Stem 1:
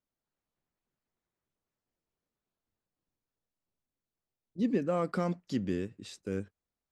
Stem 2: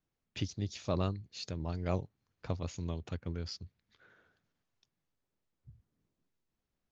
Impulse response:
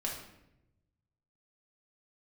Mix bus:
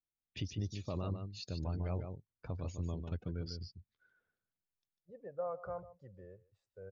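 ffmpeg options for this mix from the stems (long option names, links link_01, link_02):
-filter_complex "[0:a]firequalizer=gain_entry='entry(130,0);entry(240,-21);entry(540,10);entry(2900,-8)':delay=0.05:min_phase=1,adelay=500,volume=-15.5dB,asplit=2[link_01][link_02];[link_02]volume=-15dB[link_03];[1:a]alimiter=level_in=1dB:limit=-24dB:level=0:latency=1:release=45,volume=-1dB,adynamicequalizer=threshold=0.00126:dfrequency=4200:dqfactor=0.7:tfrequency=4200:tqfactor=0.7:attack=5:release=100:ratio=0.375:range=2:mode=cutabove:tftype=highshelf,volume=-3dB,asplit=2[link_04][link_05];[link_05]volume=-6dB[link_06];[link_03][link_06]amix=inputs=2:normalize=0,aecho=0:1:148:1[link_07];[link_01][link_04][link_07]amix=inputs=3:normalize=0,afftdn=noise_reduction=17:noise_floor=-54,lowshelf=frequency=68:gain=7.5"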